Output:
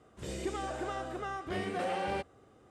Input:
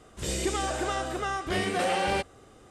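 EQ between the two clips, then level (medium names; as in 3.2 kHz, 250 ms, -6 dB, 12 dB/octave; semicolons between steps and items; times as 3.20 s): high-pass 69 Hz; treble shelf 2.7 kHz -10 dB; -6.0 dB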